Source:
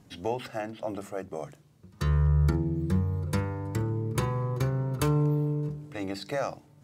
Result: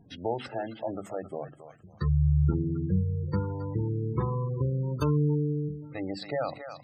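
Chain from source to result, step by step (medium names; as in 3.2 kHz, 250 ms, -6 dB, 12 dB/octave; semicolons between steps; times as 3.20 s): thinning echo 270 ms, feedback 46%, high-pass 980 Hz, level -6.5 dB; spectral gate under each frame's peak -20 dB strong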